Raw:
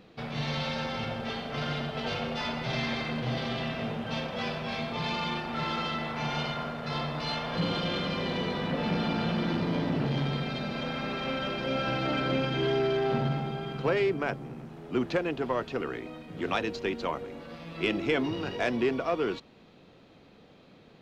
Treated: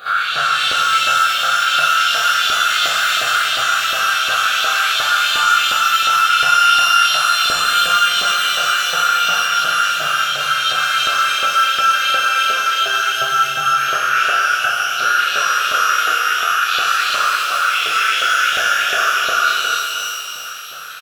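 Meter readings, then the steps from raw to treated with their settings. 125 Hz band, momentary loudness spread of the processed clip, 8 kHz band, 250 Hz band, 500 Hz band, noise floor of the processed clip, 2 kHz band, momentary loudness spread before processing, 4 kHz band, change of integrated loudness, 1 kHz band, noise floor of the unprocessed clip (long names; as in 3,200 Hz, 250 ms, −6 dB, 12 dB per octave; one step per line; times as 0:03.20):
below −10 dB, 3 LU, can't be measured, below −10 dB, −1.0 dB, −23 dBFS, +21.5 dB, 7 LU, +20.5 dB, +16.5 dB, +20.5 dB, −56 dBFS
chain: every bin's largest magnitude spread in time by 240 ms
in parallel at +1 dB: compressor whose output falls as the input rises −34 dBFS, ratio −1
on the sum: drawn EQ curve 150 Hz 0 dB, 230 Hz −22 dB, 870 Hz −7 dB, 1,400 Hz +10 dB, 2,000 Hz −19 dB, 4,700 Hz +3 dB
on a send: loudspeakers that aren't time-aligned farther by 12 metres −4 dB, 97 metres −1 dB
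on the sum: auto-filter high-pass saw up 2.8 Hz 640–3,800 Hz
phaser with its sweep stopped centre 2,300 Hz, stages 4
echo ahead of the sound 44 ms −15 dB
boost into a limiter +19 dB
reverb with rising layers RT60 2.5 s, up +12 semitones, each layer −8 dB, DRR −0.5 dB
level −9.5 dB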